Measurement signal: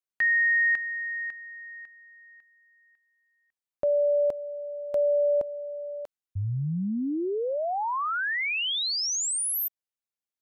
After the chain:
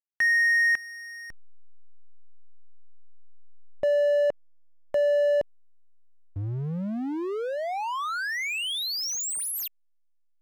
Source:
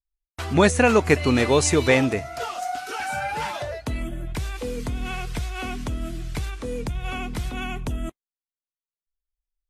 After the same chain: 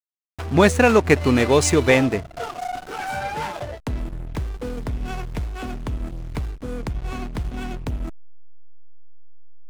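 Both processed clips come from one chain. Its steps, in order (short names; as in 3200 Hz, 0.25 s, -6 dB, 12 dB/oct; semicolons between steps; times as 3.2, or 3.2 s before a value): backlash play -25.5 dBFS; gain +2.5 dB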